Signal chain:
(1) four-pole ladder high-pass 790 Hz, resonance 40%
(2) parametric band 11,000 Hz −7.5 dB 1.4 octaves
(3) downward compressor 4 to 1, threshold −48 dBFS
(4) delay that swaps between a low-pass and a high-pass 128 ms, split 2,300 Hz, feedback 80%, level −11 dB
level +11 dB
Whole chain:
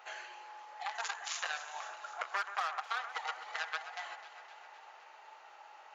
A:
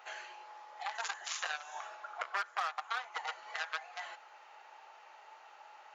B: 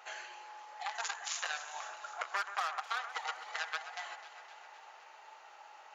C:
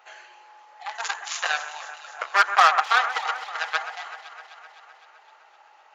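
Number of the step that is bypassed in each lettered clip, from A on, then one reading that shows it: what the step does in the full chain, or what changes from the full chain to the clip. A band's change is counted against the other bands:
4, echo-to-direct ratio −9.0 dB to none audible
2, 8 kHz band +3.0 dB
3, average gain reduction 7.5 dB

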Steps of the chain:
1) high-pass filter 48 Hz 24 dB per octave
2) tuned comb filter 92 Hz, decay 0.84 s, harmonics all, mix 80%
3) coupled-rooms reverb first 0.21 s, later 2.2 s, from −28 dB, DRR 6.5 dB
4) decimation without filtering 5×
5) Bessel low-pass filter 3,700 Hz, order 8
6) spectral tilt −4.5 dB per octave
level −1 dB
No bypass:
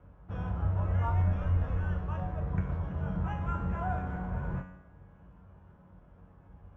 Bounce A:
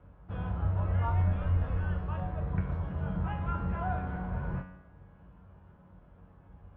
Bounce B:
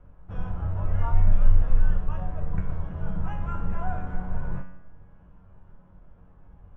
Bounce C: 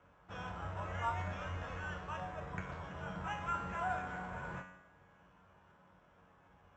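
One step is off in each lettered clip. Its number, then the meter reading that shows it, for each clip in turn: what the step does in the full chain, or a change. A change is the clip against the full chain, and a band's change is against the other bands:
4, distortion level −9 dB
1, change in momentary loudness spread +3 LU
6, 125 Hz band −13.0 dB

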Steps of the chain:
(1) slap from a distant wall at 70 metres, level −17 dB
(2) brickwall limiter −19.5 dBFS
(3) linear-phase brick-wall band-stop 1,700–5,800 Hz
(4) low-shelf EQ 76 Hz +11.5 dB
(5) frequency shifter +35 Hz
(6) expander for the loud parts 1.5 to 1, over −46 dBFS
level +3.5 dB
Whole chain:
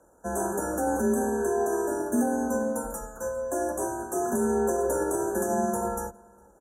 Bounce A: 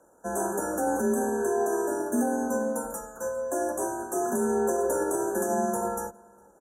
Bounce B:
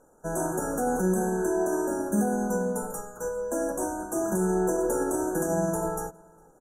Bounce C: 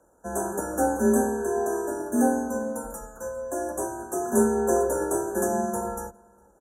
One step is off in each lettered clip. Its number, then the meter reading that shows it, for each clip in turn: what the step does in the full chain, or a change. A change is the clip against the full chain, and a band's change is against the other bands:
4, 125 Hz band −3.5 dB
5, 125 Hz band +7.5 dB
2, change in crest factor +4.5 dB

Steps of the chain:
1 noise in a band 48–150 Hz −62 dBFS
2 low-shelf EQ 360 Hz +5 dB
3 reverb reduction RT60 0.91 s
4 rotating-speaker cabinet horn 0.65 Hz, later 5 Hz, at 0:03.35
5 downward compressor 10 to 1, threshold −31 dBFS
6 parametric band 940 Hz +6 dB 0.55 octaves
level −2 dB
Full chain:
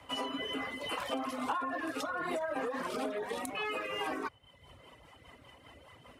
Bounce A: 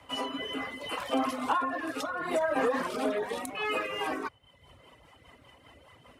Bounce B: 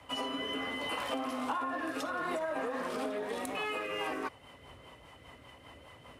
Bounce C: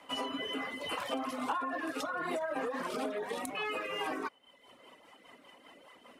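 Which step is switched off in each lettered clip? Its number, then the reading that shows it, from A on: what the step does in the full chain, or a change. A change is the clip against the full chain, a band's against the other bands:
5, average gain reduction 2.5 dB
3, change in momentary loudness spread −2 LU
1, 125 Hz band −2.5 dB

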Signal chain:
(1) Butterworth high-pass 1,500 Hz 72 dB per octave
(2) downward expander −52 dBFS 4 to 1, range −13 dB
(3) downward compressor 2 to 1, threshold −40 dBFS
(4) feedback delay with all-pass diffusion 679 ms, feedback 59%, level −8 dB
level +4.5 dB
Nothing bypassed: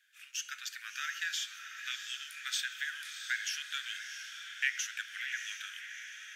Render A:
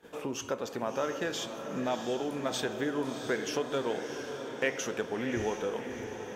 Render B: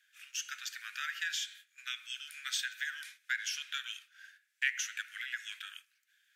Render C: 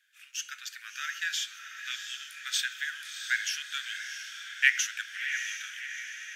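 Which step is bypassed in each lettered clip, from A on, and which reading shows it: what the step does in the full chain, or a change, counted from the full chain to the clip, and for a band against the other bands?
1, 1 kHz band +15.5 dB
4, echo-to-direct ratio −6.0 dB to none audible
3, change in crest factor +4.5 dB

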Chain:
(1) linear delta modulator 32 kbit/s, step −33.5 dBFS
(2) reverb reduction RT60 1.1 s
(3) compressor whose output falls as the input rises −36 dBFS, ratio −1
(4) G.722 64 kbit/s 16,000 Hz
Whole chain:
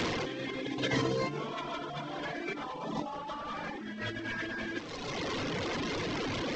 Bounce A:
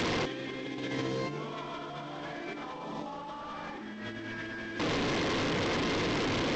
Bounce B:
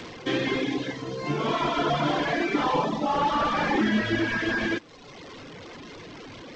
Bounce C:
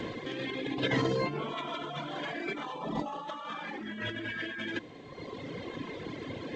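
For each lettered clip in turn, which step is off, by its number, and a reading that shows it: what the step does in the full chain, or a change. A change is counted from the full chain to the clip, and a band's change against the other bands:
2, change in crest factor −3.5 dB
3, change in crest factor −3.0 dB
1, 8 kHz band −8.5 dB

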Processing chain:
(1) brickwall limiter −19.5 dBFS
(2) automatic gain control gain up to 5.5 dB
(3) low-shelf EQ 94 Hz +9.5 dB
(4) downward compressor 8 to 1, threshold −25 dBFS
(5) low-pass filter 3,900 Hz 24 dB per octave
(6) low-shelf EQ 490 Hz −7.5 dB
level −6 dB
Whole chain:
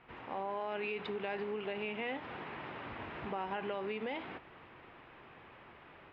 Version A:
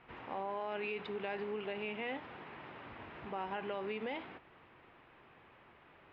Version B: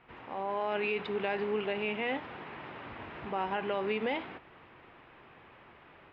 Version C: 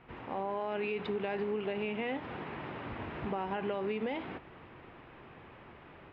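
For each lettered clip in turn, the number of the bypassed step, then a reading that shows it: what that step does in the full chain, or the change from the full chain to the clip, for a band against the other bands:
2, change in momentary loudness spread +4 LU
4, average gain reduction 2.5 dB
6, 125 Hz band +5.0 dB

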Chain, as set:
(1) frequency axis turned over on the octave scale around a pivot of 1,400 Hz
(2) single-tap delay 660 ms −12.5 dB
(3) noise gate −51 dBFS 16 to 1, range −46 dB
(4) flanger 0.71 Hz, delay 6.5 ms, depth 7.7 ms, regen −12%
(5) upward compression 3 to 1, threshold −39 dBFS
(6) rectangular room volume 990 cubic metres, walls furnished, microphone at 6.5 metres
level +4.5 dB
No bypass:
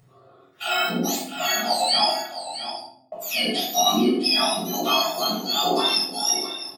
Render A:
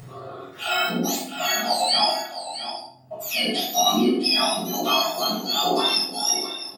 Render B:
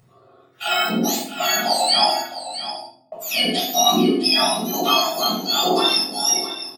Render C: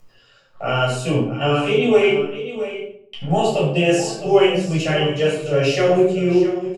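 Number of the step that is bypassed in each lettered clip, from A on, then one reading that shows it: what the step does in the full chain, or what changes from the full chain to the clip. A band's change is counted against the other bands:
3, change in momentary loudness spread +1 LU
4, change in integrated loudness +3.0 LU
1, 125 Hz band +16.0 dB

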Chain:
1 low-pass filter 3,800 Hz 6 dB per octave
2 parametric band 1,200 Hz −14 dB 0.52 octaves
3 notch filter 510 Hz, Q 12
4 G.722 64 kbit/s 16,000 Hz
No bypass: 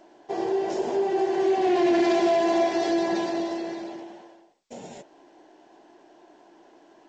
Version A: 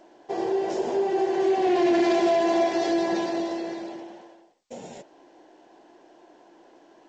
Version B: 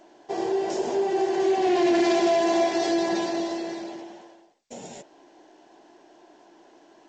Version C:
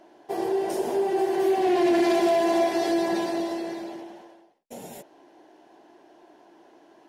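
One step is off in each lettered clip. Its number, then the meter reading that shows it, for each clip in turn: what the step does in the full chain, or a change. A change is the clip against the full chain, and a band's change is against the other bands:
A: 3, change in momentary loudness spread +2 LU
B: 1, 4 kHz band +3.0 dB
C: 4, change in momentary loudness spread +2 LU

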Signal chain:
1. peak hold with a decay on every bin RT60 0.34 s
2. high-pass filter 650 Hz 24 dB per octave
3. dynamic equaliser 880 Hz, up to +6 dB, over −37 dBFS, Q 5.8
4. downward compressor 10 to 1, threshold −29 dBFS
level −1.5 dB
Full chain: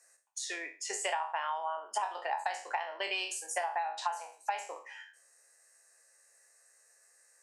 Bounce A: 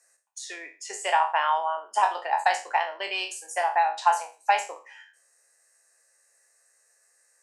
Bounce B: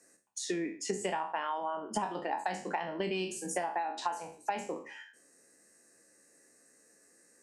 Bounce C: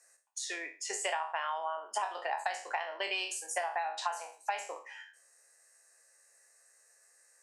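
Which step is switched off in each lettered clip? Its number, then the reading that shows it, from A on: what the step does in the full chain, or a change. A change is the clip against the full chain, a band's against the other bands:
4, average gain reduction 6.0 dB
2, 500 Hz band +7.0 dB
3, 1 kHz band −1.5 dB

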